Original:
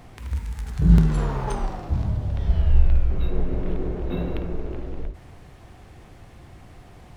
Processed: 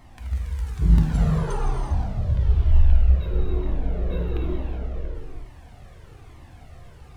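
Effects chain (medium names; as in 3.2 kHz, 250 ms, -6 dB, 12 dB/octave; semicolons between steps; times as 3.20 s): gated-style reverb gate 420 ms flat, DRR -1 dB; Shepard-style flanger falling 1.1 Hz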